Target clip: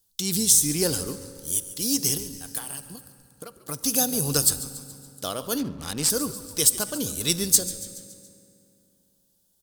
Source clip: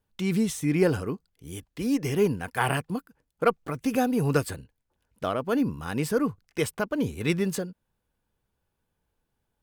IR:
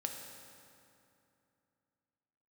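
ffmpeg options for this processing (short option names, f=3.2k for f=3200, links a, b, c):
-filter_complex "[0:a]asettb=1/sr,asplit=3[a][b][c];[a]atrim=end=2.174[d];[b]atrim=start=2.17:end=3.69,asetpts=PTS-STARTPTS,afade=t=in:d=0.004:c=qsin,afade=t=out:st=1.516:d=0.004:c=qsin,acompressor=threshold=-35dB:ratio=16[e];[c]atrim=start=3.686[f];[d][e]acrossfade=d=0.004:c1=hsin:c2=qsin[g];[g][f]acrossfade=d=0.004:c1=qsin:c2=hsin,asplit=6[h][i][j][k][l][m];[i]adelay=141,afreqshift=-97,volume=-16dB[n];[j]adelay=282,afreqshift=-194,volume=-21.4dB[o];[k]adelay=423,afreqshift=-291,volume=-26.7dB[p];[l]adelay=564,afreqshift=-388,volume=-32.1dB[q];[m]adelay=705,afreqshift=-485,volume=-37.4dB[r];[h][n][o][p][q][r]amix=inputs=6:normalize=0,asplit=2[s][t];[1:a]atrim=start_sample=2205[u];[t][u]afir=irnorm=-1:irlink=0,volume=-7dB[v];[s][v]amix=inputs=2:normalize=0,aexciter=amount=12.9:drive=4.2:freq=3.5k,asettb=1/sr,asplit=3[w][x][y];[w]atrim=end=5.584[z];[x]atrim=start=5.58:end=6.1,asetpts=PTS-STARTPTS,afade=t=in:d=0.004:c=qsin,afade=t=out:st=0.516:d=0.004:c=qsin,adynamicsmooth=sensitivity=6.5:basefreq=1.1k[aa];[y]atrim=start=6.096[ab];[z][aa]acrossfade=d=0.004:c1=hsin:c2=qsin[ac];[ac][ab]acrossfade=d=0.004:c1=qsin:c2=hsin,volume=-7dB"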